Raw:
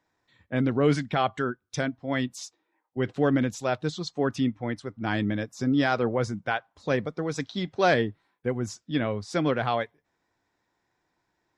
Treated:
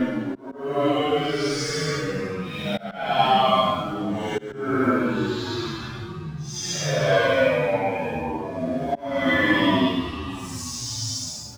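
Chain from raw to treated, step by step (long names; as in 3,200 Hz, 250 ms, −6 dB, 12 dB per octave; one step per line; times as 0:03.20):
in parallel at −2.5 dB: brickwall limiter −22.5 dBFS, peak gain reduction 11.5 dB
on the sum: thirty-one-band graphic EQ 100 Hz −3 dB, 630 Hz +9 dB, 3,150 Hz +3 dB, 5,000 Hz +4 dB
on a send at −5.5 dB: convolution reverb RT60 0.35 s, pre-delay 5 ms
on the sum: phase shifter 0.69 Hz, delay 3.5 ms, feedback 58%
low-shelf EQ 500 Hz −7 dB
dead-zone distortion −45.5 dBFS
delay with pitch and tempo change per echo 279 ms, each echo −5 semitones, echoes 3, each echo −6 dB
extreme stretch with random phases 6.4×, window 0.10 s, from 0:00.70
volume swells 375 ms
barber-pole flanger 9.2 ms −1.6 Hz
level +3.5 dB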